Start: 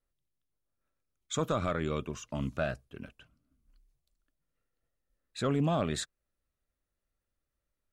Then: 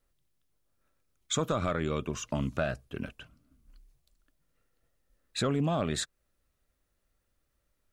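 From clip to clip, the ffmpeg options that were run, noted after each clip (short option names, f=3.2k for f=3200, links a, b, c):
-af "acompressor=threshold=-38dB:ratio=2.5,volume=8.5dB"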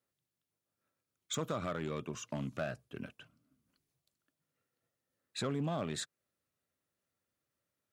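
-af "volume=22.5dB,asoftclip=hard,volume=-22.5dB,highpass=f=100:w=0.5412,highpass=f=100:w=1.3066,volume=-6.5dB"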